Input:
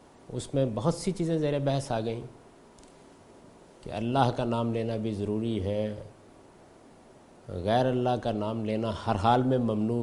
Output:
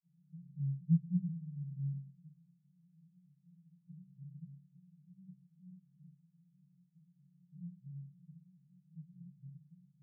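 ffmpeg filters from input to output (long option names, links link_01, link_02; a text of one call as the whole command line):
ffmpeg -i in.wav -af "asuperpass=centerf=160:order=20:qfactor=3.3,flanger=delay=15:depth=3.6:speed=1.5,volume=2.5dB" out.wav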